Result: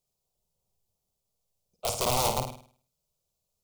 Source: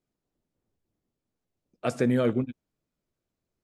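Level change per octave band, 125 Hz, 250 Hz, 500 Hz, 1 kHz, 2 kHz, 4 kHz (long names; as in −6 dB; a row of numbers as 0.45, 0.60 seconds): −5.0, −15.0, −4.0, +9.5, −2.0, +13.0 decibels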